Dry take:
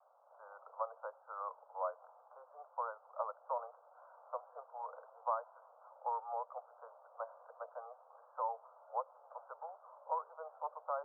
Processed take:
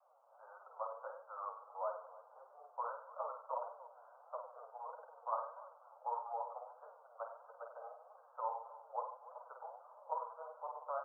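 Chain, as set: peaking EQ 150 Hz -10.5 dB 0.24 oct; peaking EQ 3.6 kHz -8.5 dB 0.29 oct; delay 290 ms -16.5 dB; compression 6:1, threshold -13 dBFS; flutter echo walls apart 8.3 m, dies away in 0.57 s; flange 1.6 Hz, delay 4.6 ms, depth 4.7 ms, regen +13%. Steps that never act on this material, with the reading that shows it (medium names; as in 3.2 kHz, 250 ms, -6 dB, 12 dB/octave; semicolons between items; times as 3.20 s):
peaking EQ 150 Hz: input has nothing below 430 Hz; peaking EQ 3.6 kHz: input has nothing above 1.6 kHz; compression, threshold -13 dBFS: peak at its input -23.0 dBFS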